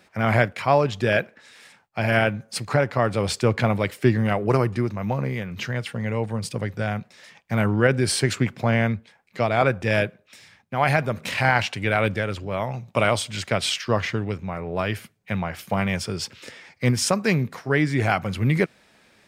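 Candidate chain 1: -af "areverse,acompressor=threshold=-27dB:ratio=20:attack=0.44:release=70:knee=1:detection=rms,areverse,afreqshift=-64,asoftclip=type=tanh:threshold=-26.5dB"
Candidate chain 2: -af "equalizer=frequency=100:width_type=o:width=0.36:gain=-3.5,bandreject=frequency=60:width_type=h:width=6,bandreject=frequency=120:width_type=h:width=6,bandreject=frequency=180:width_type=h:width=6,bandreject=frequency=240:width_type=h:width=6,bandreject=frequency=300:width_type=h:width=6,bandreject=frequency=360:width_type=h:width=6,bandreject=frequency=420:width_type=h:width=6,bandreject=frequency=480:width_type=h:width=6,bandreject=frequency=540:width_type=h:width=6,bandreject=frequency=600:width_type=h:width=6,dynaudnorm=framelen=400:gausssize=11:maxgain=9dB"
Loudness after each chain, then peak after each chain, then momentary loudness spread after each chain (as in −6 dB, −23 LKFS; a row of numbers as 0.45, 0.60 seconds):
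−37.0, −21.0 LKFS; −27.0, −1.0 dBFS; 7, 9 LU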